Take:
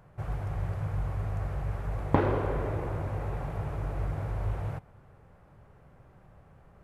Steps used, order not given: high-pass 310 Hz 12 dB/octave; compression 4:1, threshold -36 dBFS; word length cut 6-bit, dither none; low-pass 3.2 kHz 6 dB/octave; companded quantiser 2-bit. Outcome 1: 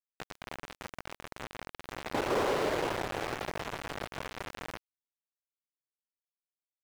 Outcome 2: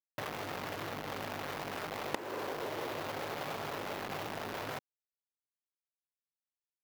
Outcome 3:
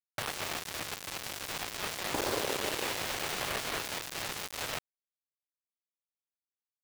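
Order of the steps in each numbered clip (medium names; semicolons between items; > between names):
high-pass > word length cut > compression > companded quantiser > low-pass; companded quantiser > low-pass > word length cut > high-pass > compression; low-pass > word length cut > compression > high-pass > companded quantiser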